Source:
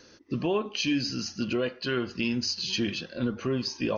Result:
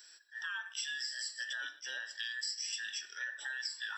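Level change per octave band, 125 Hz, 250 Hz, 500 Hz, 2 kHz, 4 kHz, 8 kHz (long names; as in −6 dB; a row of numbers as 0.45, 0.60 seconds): below −40 dB, below −40 dB, −35.0 dB, −1.0 dB, −7.0 dB, can't be measured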